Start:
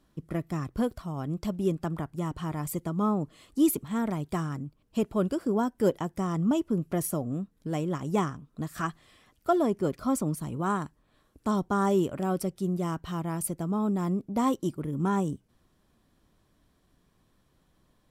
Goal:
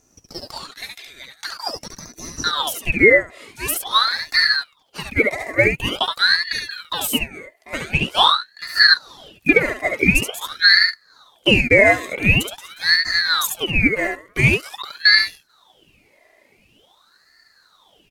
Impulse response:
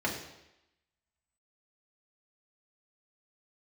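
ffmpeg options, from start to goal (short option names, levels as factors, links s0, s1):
-af "aecho=1:1:2.9:0.44,asoftclip=type=tanh:threshold=0.2,asetnsamples=n=441:p=0,asendcmd='2.44 highpass f 1300',highpass=f=2800:t=q:w=13,asoftclip=type=hard:threshold=0.631,aecho=1:1:70:0.631,alimiter=level_in=3.55:limit=0.891:release=50:level=0:latency=1,aeval=exprs='val(0)*sin(2*PI*1900*n/s+1900*0.65/0.46*sin(2*PI*0.46*n/s))':c=same"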